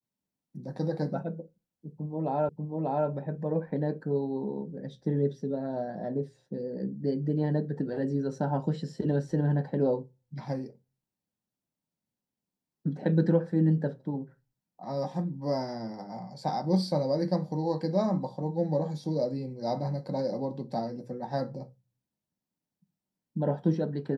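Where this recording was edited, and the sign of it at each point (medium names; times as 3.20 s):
2.49 s: repeat of the last 0.59 s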